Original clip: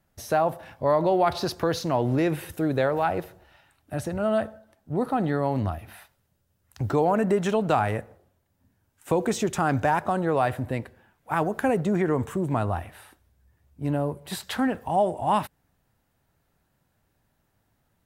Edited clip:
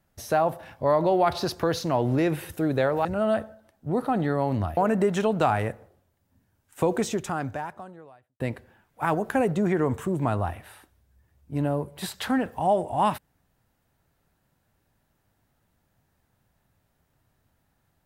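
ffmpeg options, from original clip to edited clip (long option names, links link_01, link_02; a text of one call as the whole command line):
ffmpeg -i in.wav -filter_complex "[0:a]asplit=4[link_01][link_02][link_03][link_04];[link_01]atrim=end=3.052[link_05];[link_02]atrim=start=4.088:end=5.812[link_06];[link_03]atrim=start=7.058:end=10.69,asetpts=PTS-STARTPTS,afade=type=out:start_time=2.192:duration=1.44:curve=qua[link_07];[link_04]atrim=start=10.69,asetpts=PTS-STARTPTS,afade=type=in:duration=0.004:curve=hsin[link_08];[link_05][link_06]acrossfade=duration=0.004:curve1=hsin:curve2=hsin[link_09];[link_07][link_08]concat=n=2:v=0:a=1[link_10];[link_09][link_10]acrossfade=duration=0.004:curve1=hsin:curve2=hsin" out.wav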